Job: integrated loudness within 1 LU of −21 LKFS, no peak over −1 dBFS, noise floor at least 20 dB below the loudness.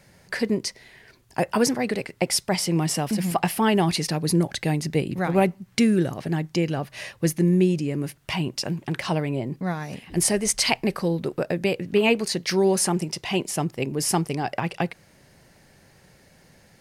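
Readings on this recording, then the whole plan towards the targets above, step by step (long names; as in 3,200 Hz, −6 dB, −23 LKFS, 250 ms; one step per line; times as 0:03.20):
integrated loudness −24.5 LKFS; sample peak −5.0 dBFS; target loudness −21.0 LKFS
→ level +3.5 dB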